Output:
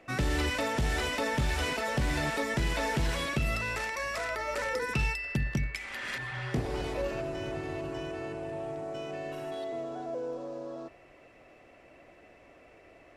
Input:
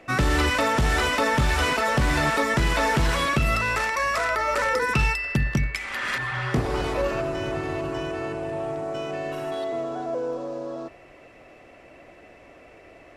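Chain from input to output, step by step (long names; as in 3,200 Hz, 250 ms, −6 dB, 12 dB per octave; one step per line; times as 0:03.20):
dynamic equaliser 1,200 Hz, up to −7 dB, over −41 dBFS, Q 2.1
level −7 dB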